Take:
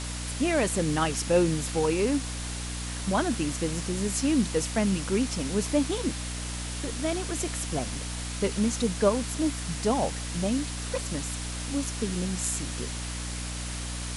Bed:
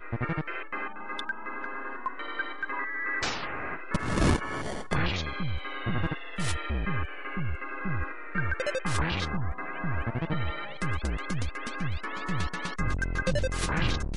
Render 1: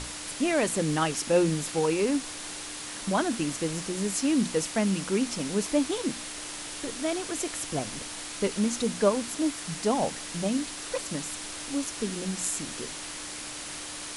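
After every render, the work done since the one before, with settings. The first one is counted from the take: notches 60/120/180/240 Hz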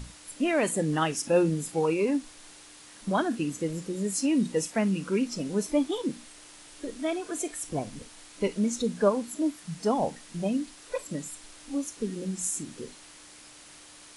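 noise print and reduce 12 dB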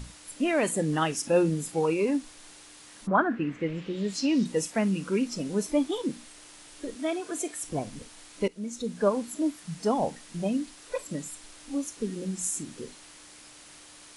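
3.06–4.44 synth low-pass 1200 Hz -> 5700 Hz, resonance Q 2.5; 6.95–7.62 HPF 88 Hz; 8.48–9.18 fade in linear, from -15.5 dB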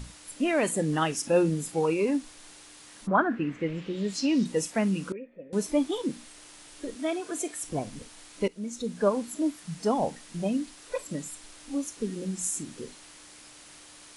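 5.12–5.53 vocal tract filter e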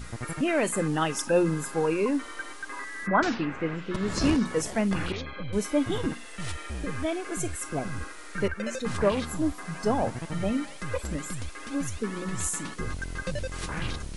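add bed -5 dB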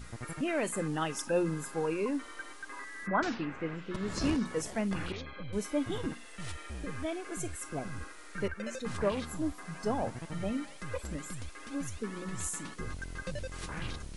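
gain -6.5 dB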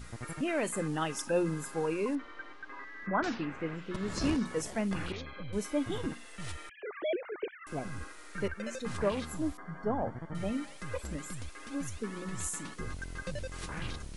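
2.15–3.24 air absorption 240 m; 6.69–7.67 sine-wave speech; 9.57–10.35 polynomial smoothing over 41 samples

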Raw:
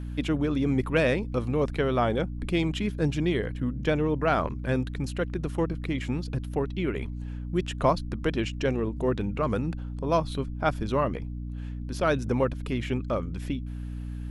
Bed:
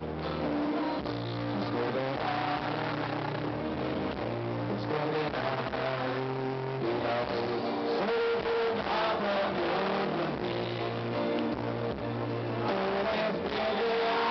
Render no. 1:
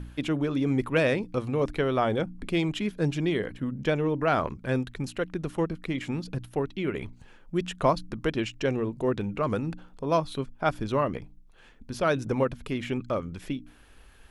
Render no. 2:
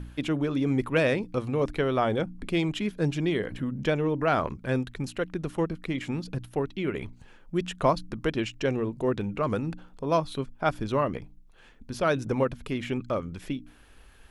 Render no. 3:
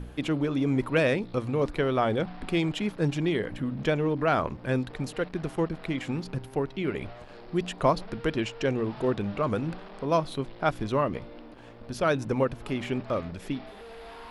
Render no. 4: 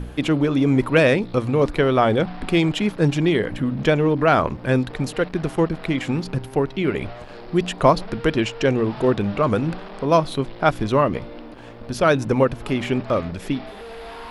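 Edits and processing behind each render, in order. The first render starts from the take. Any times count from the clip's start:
de-hum 60 Hz, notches 5
3.52–4.56 upward compressor, threshold -28 dBFS
add bed -16.5 dB
gain +8 dB

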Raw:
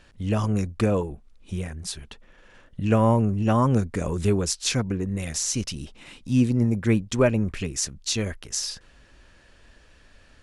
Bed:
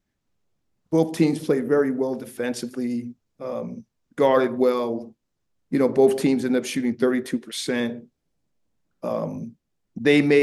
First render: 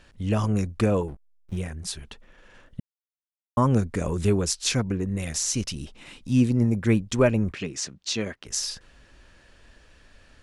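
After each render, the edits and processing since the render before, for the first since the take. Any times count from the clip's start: 1.08–1.57 backlash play -34.5 dBFS; 2.8–3.57 mute; 7.53–8.46 BPF 160–5700 Hz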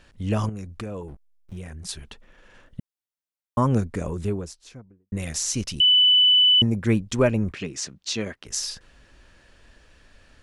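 0.49–1.89 compressor 2.5:1, threshold -35 dBFS; 3.63–5.12 studio fade out; 5.8–6.62 bleep 2990 Hz -13 dBFS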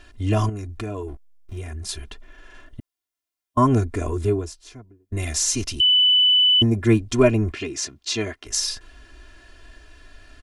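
comb 2.9 ms, depth 85%; harmonic-percussive split harmonic +4 dB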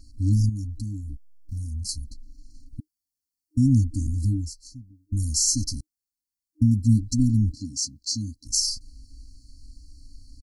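comb 1.1 ms, depth 32%; FFT band-reject 310–4000 Hz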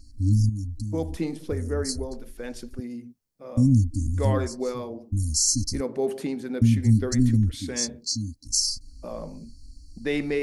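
add bed -9.5 dB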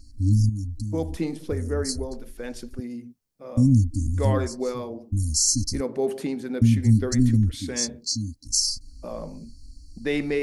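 gain +1 dB

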